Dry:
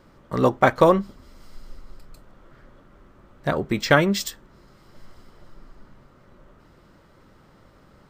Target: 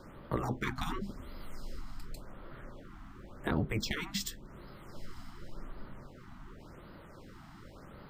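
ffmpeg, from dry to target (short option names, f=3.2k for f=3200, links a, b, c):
-filter_complex "[0:a]afftfilt=real='re*lt(hypot(re,im),0.316)':imag='im*lt(hypot(re,im),0.316)':win_size=1024:overlap=0.75,acrossover=split=320[a][b];[b]acompressor=threshold=-43dB:ratio=2.5[c];[a][c]amix=inputs=2:normalize=0,afftfilt=real='re*(1-between(b*sr/1024,430*pow(7300/430,0.5+0.5*sin(2*PI*0.9*pts/sr))/1.41,430*pow(7300/430,0.5+0.5*sin(2*PI*0.9*pts/sr))*1.41))':imag='im*(1-between(b*sr/1024,430*pow(7300/430,0.5+0.5*sin(2*PI*0.9*pts/sr))/1.41,430*pow(7300/430,0.5+0.5*sin(2*PI*0.9*pts/sr))*1.41))':win_size=1024:overlap=0.75,volume=2.5dB"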